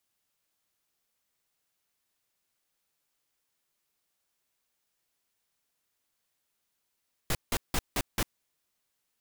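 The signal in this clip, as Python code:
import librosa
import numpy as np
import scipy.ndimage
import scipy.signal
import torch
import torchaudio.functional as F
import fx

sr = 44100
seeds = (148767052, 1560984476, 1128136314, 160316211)

y = fx.noise_burst(sr, seeds[0], colour='pink', on_s=0.05, off_s=0.17, bursts=5, level_db=-27.5)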